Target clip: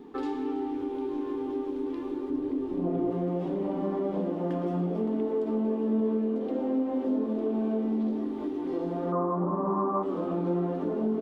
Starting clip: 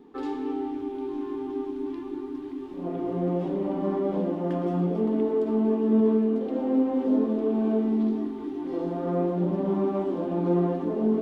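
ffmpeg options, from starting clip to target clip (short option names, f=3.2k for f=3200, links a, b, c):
-filter_complex "[0:a]asettb=1/sr,asplit=3[a][b][c];[a]atrim=end=9.124[d];[b]atrim=start=9.12:end=10.03,asetpts=PTS-STARTPTS,afade=t=in:d=0.004:c=qsin,afade=t=out:st=0.906:d=0.004:c=qsin,lowpass=f=1.1k:t=q:w=13[e];[c]atrim=start=10.026[f];[d][e]acrossfade=d=0.004:c1=hsin:c2=qsin[g];[g][f]acrossfade=d=0.004:c1=qsin:c2=hsin,asplit=5[h][i][j][k][l];[i]adelay=327,afreqshift=83,volume=-18dB[m];[j]adelay=654,afreqshift=166,volume=-24.6dB[n];[k]adelay=981,afreqshift=249,volume=-31.1dB[o];[l]adelay=1308,afreqshift=332,volume=-37.7dB[p];[h][m][n][o][p]amix=inputs=5:normalize=0,acompressor=threshold=-37dB:ratio=2,asettb=1/sr,asplit=3[q][r][s];[q]atrim=end=2.304[t];[r]atrim=start=2.3:end=3.11,asetpts=PTS-STARTPTS,afade=t=in:d=0.004:c=qsin,afade=t=out:st=0.806:d=0.004:c=qsin,tiltshelf=f=790:g=5[u];[s]atrim=start=3.106[v];[t][u]acrossfade=d=0.004:c1=hsin:c2=qsin[w];[w][v]acrossfade=d=0.004:c1=qsin:c2=hsin,volume=4.5dB"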